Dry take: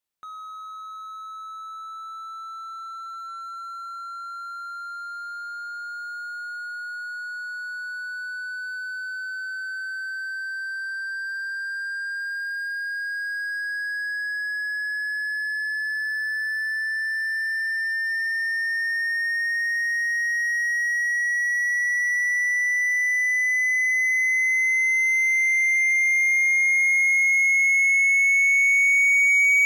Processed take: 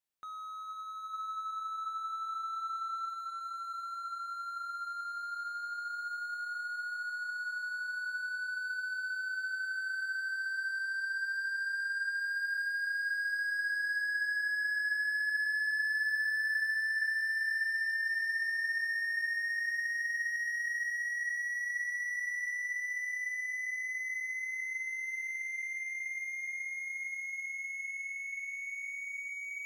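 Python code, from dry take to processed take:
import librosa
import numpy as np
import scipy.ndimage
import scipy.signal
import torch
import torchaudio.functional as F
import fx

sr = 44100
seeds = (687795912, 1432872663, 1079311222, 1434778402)

y = fx.over_compress(x, sr, threshold_db=-27.0, ratio=-1.0)
y = fx.echo_diffused(y, sr, ms=471, feedback_pct=70, wet_db=-12.0)
y = fx.dynamic_eq(y, sr, hz=1600.0, q=0.74, threshold_db=-42.0, ratio=4.0, max_db=4, at=(1.13, 3.1))
y = F.gain(torch.from_numpy(y), -8.5).numpy()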